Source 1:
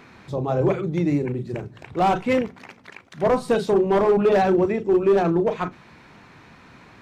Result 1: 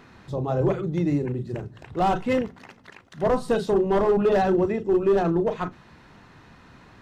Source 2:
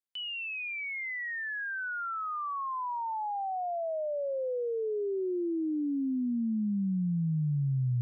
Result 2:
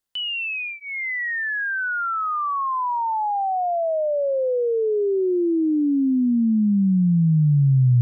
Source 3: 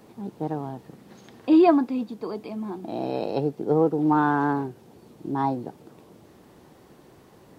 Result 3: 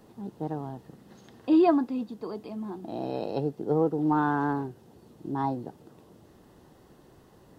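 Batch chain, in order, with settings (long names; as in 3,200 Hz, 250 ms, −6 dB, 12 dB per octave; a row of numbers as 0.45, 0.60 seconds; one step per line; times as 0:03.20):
low-shelf EQ 67 Hz +10.5 dB
notch filter 2,300 Hz, Q 8.3
normalise the peak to −12 dBFS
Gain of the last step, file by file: −3.0, +10.5, −4.5 decibels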